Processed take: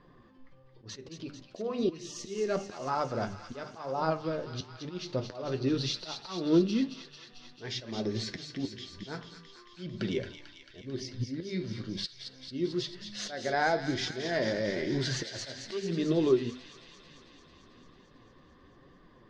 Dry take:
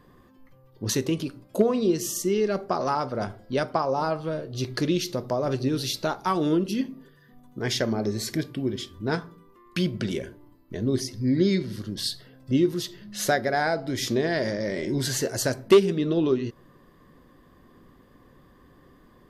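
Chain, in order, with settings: LPF 5300 Hz 24 dB/oct; notches 50/100/150/200/250 Hz; auto swell 0.309 s; flange 1 Hz, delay 4.8 ms, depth 8.3 ms, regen +56%; thin delay 0.222 s, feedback 74%, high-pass 1900 Hz, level -7 dB; gain +1.5 dB

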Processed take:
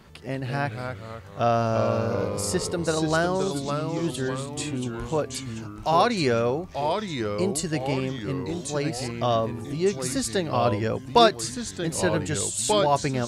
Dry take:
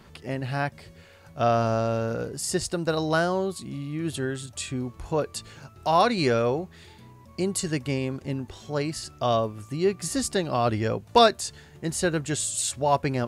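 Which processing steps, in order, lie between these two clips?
echoes that change speed 0.171 s, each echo -2 st, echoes 3, each echo -6 dB

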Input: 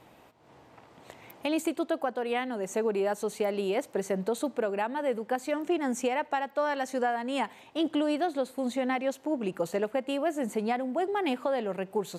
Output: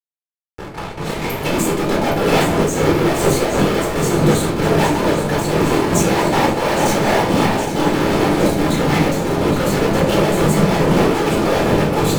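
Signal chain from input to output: gate with hold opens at -45 dBFS; low shelf 400 Hz +8 dB; in parallel at +0.5 dB: compressor, threshold -42 dBFS, peak gain reduction 20.5 dB; on the sum: whisperiser; fuzz box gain 43 dB, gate -44 dBFS; on a send: echo with dull and thin repeats by turns 0.408 s, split 920 Hz, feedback 80%, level -6 dB; on the sum: shoebox room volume 800 m³, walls furnished, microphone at 4.2 m; noise-modulated level, depth 55%; gain -5.5 dB

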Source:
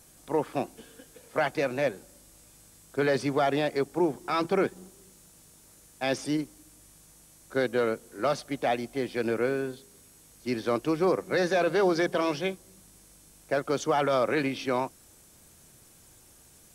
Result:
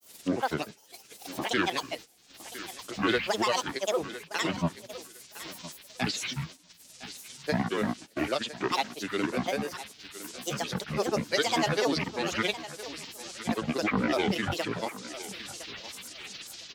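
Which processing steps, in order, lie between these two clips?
gliding pitch shift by -8.5 st starting unshifted; weighting filter D; upward compressor, threshold -31 dBFS; grains, grains 20/s, pitch spread up and down by 12 st; thinning echo 1.009 s, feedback 31%, high-pass 230 Hz, level -14 dB; gate -42 dBFS, range -14 dB

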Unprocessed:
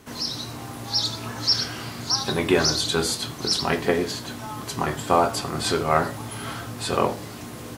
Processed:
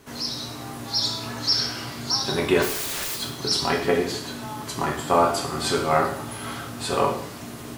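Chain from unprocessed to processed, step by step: 2.62–3.15 wrapped overs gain 24.5 dB; two-slope reverb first 0.67 s, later 1.7 s, from -27 dB, DRR 1.5 dB; gain -2 dB

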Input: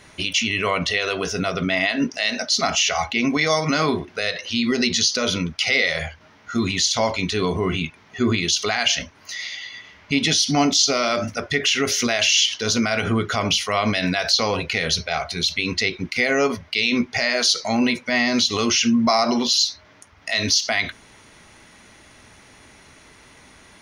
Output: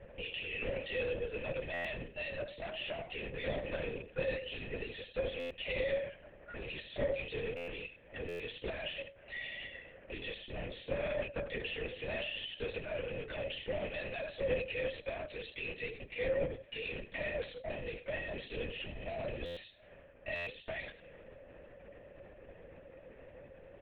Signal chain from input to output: rattling part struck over -25 dBFS, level -17 dBFS; low-pass opened by the level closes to 1100 Hz, open at -18 dBFS; bell 1900 Hz -9.5 dB 0.49 oct; compressor 2.5:1, threshold -37 dBFS, peak gain reduction 15 dB; soft clip -34 dBFS, distortion -10 dB; vowel filter e; on a send: echo 89 ms -13.5 dB; on the sum: LPC vocoder at 8 kHz whisper; stuck buffer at 1.73/5.39/7.56/8.28/19.45/20.35, samples 512, times 9; gain +12 dB

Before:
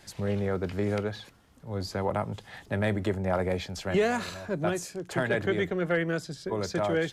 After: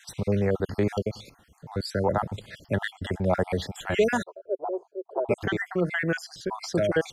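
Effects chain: random spectral dropouts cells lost 51%; 4.23–5.29 elliptic band-pass 390–990 Hz, stop band 40 dB; gain +5 dB

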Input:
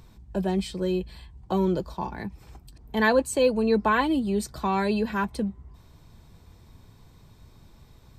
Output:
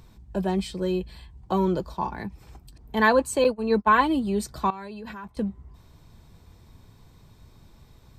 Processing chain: 3.44–3.98 gate -22 dBFS, range -26 dB; dynamic EQ 1100 Hz, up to +6 dB, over -40 dBFS, Q 1.7; 4.7–5.37 level quantiser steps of 19 dB

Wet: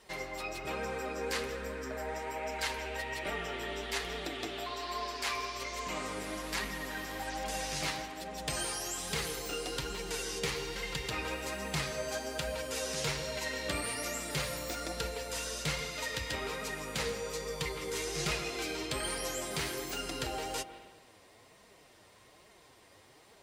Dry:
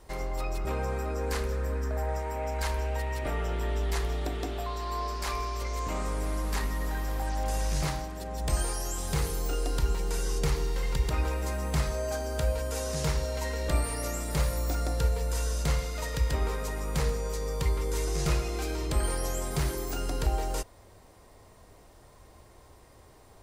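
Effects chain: bell 4900 Hz -4.5 dB 2 oct; flange 1.2 Hz, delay 4.2 ms, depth 6.7 ms, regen +30%; weighting filter D; on a send: reverb RT60 1.1 s, pre-delay 0.141 s, DRR 12.5 dB

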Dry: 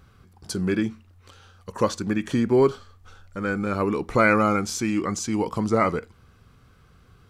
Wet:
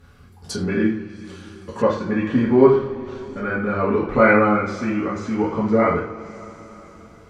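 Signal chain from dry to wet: two-slope reverb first 0.46 s, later 4.7 s, from -22 dB, DRR -7 dB; treble ducked by the level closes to 2400 Hz, closed at -19 dBFS; vocal rider 2 s; gain -4.5 dB

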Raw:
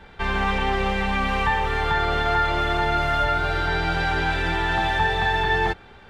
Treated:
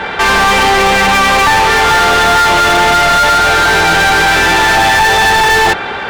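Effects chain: high shelf 3300 Hz -6 dB; overdrive pedal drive 33 dB, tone 6100 Hz, clips at -9 dBFS; gain +6 dB

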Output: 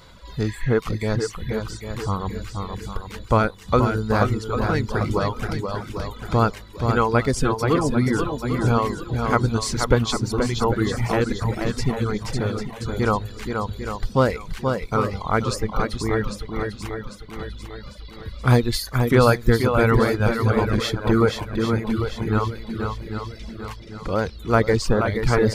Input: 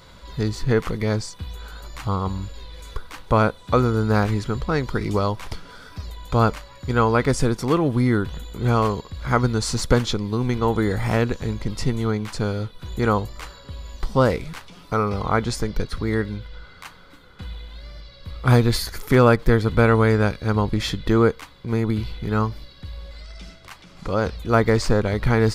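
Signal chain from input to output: spectral repair 0.46–0.73, 1600–7200 Hz both; swung echo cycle 0.797 s, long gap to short 1.5:1, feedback 43%, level -5 dB; reverb removal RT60 0.92 s

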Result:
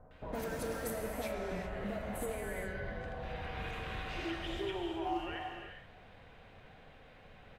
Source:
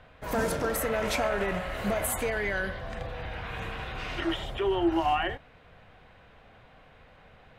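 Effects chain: 0.79–3.12 high shelf 2000 Hz -10 dB; compressor 3:1, threshold -36 dBFS, peak gain reduction 11.5 dB; bands offset in time lows, highs 0.11 s, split 1100 Hz; non-linear reverb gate 0.43 s flat, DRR 2 dB; gain -3 dB

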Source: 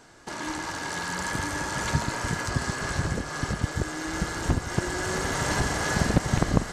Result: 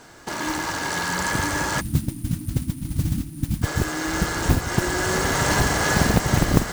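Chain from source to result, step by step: spectral delete 1.8–3.63, 340–8800 Hz; one-sided clip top -18 dBFS; modulation noise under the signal 17 dB; gain +6 dB

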